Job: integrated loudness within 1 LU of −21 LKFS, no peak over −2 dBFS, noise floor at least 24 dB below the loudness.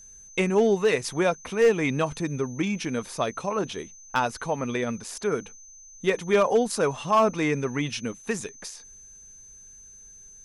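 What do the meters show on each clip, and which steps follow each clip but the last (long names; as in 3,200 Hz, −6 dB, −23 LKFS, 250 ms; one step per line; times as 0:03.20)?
share of clipped samples 0.3%; peaks flattened at −13.0 dBFS; interfering tone 6,200 Hz; level of the tone −46 dBFS; integrated loudness −26.0 LKFS; sample peak −13.0 dBFS; target loudness −21.0 LKFS
→ clipped peaks rebuilt −13 dBFS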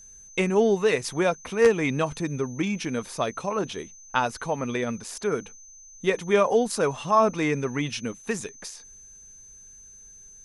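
share of clipped samples 0.0%; interfering tone 6,200 Hz; level of the tone −46 dBFS
→ notch filter 6,200 Hz, Q 30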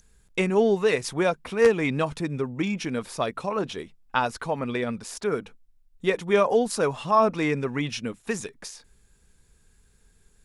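interfering tone none found; integrated loudness −25.5 LKFS; sample peak −4.5 dBFS; target loudness −21.0 LKFS
→ level +4.5 dB
brickwall limiter −2 dBFS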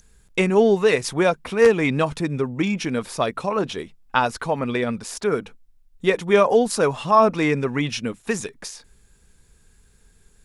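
integrated loudness −21.0 LKFS; sample peak −2.0 dBFS; background noise floor −57 dBFS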